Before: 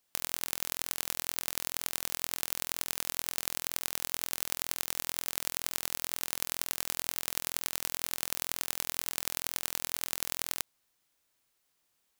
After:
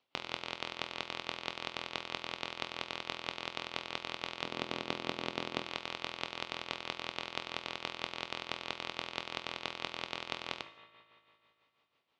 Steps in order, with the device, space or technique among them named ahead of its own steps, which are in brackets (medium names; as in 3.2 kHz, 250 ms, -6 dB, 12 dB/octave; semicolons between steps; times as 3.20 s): combo amplifier with spring reverb and tremolo (spring tank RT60 2.8 s, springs 56 ms, chirp 80 ms, DRR 13 dB; tremolo 6.1 Hz, depth 61%; cabinet simulation 92–3600 Hz, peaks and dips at 97 Hz -7 dB, 190 Hz -6 dB, 1.7 kHz -9 dB); 4.43–5.64 s: peaking EQ 240 Hz +10 dB 2.4 oct; plate-style reverb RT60 0.65 s, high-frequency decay 0.95×, DRR 12 dB; trim +6 dB